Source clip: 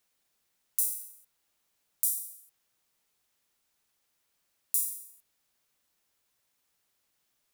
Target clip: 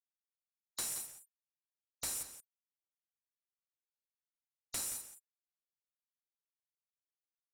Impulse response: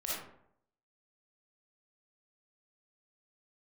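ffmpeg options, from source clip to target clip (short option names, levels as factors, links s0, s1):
-filter_complex "[0:a]afwtdn=0.00398,afftfilt=real='re*gte(hypot(re,im),0.00398)':imag='im*gte(hypot(re,im),0.00398)':win_size=1024:overlap=0.75,aemphasis=mode=reproduction:type=bsi,acrossover=split=5400[s0][s1];[s1]acompressor=threshold=0.00631:ratio=4:attack=1:release=60[s2];[s0][s2]amix=inputs=2:normalize=0,lowshelf=f=340:g=-6,bandreject=f=580:w=14,acompressor=threshold=0.00224:ratio=5,afreqshift=36,asplit=2[s3][s4];[s4]highpass=f=720:p=1,volume=20,asoftclip=type=tanh:threshold=0.0355[s5];[s3][s5]amix=inputs=2:normalize=0,lowpass=f=1200:p=1,volume=0.501,asplit=2[s6][s7];[s7]adelay=174.9,volume=0.316,highshelf=f=4000:g=-3.94[s8];[s6][s8]amix=inputs=2:normalize=0,volume=7.94"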